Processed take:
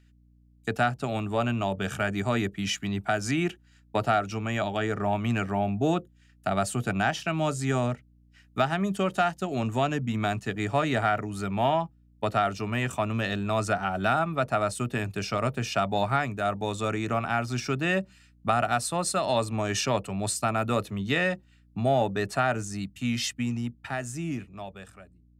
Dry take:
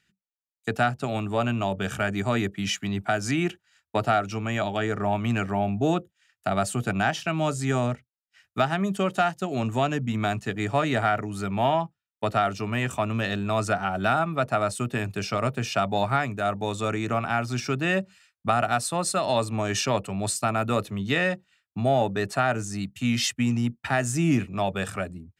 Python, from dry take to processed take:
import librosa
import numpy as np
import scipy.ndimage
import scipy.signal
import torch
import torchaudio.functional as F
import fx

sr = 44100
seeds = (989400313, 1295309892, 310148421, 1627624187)

y = fx.fade_out_tail(x, sr, length_s=2.96)
y = fx.add_hum(y, sr, base_hz=60, snr_db=31)
y = F.gain(torch.from_numpy(y), -1.5).numpy()